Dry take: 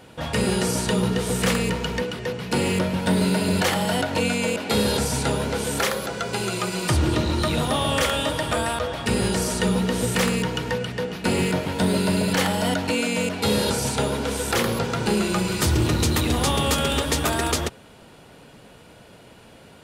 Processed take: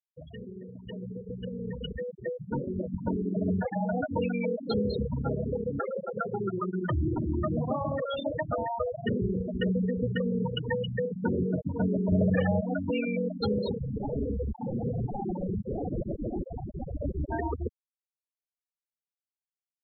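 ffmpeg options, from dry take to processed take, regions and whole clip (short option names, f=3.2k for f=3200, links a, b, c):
-filter_complex "[0:a]asettb=1/sr,asplit=3[a][b][c];[a]atrim=end=1.934[d];[b]atrim=start=1.93:end=3.37,asetpts=PTS-STARTPTS,afade=t=in:d=0.004:c=qsin,afade=t=out:st=1.436:d=0.004:c=qsin,highpass=f=45:p=1,tremolo=f=140:d=0.71,asplit=2[e][f];[f]adelay=14,volume=-7dB[g];[e][g]amix=inputs=2:normalize=0,atrim=end_sample=63504[h];[c]atrim=start=3.366[i];[d][h]acrossfade=d=0.004:c1=hsin:c2=qsin[j];[j][i]acrossfade=d=0.004:c1=qsin:c2=hsin,asettb=1/sr,asplit=3[k][l][m];[k]atrim=end=6.024[n];[l]atrim=start=6.02:end=9.22,asetpts=PTS-STARTPTS,afade=t=in:d=0.004:c=qsin,afade=t=out:st=3.196:d=0.004:c=qsin,highpass=77,aeval=exprs='(mod(4.47*val(0)+1,2)-1)/4.47':c=same,highshelf=f=7k:g=-11.5[o];[m]atrim=start=9.216[p];[n][o]acrossfade=d=0.004:c1=hsin:c2=qsin[q];[q][p]acrossfade=d=0.004:c1=qsin:c2=hsin,asettb=1/sr,asplit=3[r][s][t];[r]atrim=end=12.124[u];[s]atrim=start=12.12:end=12.61,asetpts=PTS-STARTPTS,afade=t=in:d=0.004:c=qsin,afade=t=out:st=0.486:d=0.004:c=qsin,lowshelf=f=290:g=4.5,aecho=1:1:1.7:0.4,atrim=end_sample=21609,acontrast=82[v];[t]atrim=start=12.606[w];[u][v]acrossfade=d=0.004:c1=hsin:c2=qsin[x];[x][w]acrossfade=d=0.004:c1=qsin:c2=hsin,asettb=1/sr,asplit=3[y][z][aa];[y]atrim=end=13.784[ab];[z]atrim=start=13.78:end=17.32,asetpts=PTS-STARTPTS,afade=t=in:d=0.004:c=qsin,afade=t=out:st=3.536:d=0.004:c=qsin,lowshelf=f=260:g=6.5,aeval=exprs='0.0841*(abs(mod(val(0)/0.0841+3,4)-2)-1)':c=same,asuperstop=centerf=1400:order=20:qfactor=1.3[ac];[aa]atrim=start=17.316[ad];[ab][ac]acrossfade=d=0.004:c1=hsin:c2=qsin[ae];[ae][ad]acrossfade=d=0.004:c1=qsin:c2=hsin,acompressor=threshold=-38dB:ratio=3,afftfilt=real='re*gte(hypot(re,im),0.0562)':imag='im*gte(hypot(re,im),0.0562)':win_size=1024:overlap=0.75,dynaudnorm=f=760:g=5:m=15dB,volume=-5.5dB"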